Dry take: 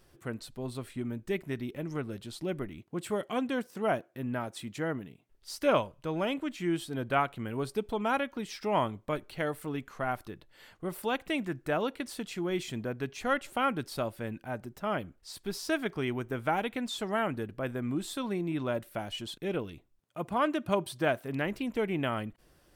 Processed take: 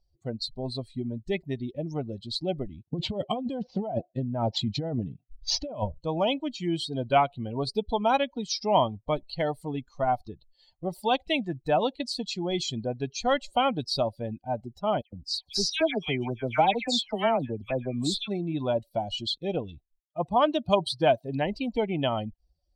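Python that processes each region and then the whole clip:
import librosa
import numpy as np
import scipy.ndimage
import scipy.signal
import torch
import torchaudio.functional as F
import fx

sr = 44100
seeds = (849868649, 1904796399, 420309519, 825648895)

y = fx.chain(x, sr, fx.low_shelf(hz=210.0, db=8.5),
    fx.over_compress(threshold_db=-34.0, ratio=-1.0),
    fx.resample_linear(factor=4), at=(2.87, 5.98))
y = fx.chain(y, sr, fx.peak_eq(hz=2300.0, db=4.5, octaves=0.5),
    fx.dispersion(late='lows', ms=118.0, hz=2200.0), at=(15.01, 18.28))
y = fx.bin_expand(y, sr, power=2.0)
y = fx.curve_eq(y, sr, hz=(410.0, 720.0, 1600.0, 4500.0, 12000.0), db=(0, 15, -18, 6, -27))
y = fx.spectral_comp(y, sr, ratio=2.0)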